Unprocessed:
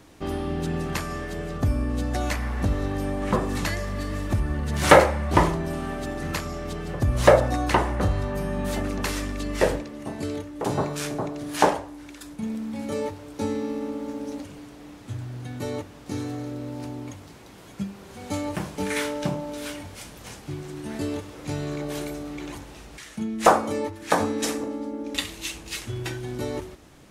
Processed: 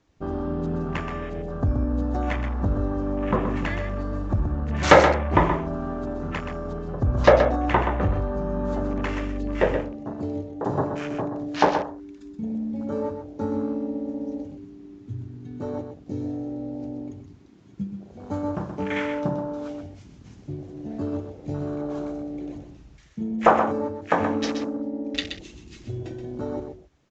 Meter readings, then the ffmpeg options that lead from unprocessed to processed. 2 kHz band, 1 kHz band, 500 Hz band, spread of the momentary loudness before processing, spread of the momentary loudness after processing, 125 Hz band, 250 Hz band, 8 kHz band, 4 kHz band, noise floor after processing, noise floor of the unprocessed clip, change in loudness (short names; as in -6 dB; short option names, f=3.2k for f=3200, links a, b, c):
0.0 dB, +0.5 dB, +0.5 dB, 16 LU, 16 LU, 0.0 dB, +1.5 dB, -10.0 dB, -3.0 dB, -49 dBFS, -45 dBFS, +0.5 dB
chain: -filter_complex "[0:a]afwtdn=0.02,asplit=2[a][b];[b]aecho=0:1:126:0.422[c];[a][c]amix=inputs=2:normalize=0,aresample=16000,aresample=44100"